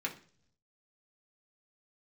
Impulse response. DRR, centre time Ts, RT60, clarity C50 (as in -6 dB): -2.0 dB, 11 ms, 0.50 s, 13.0 dB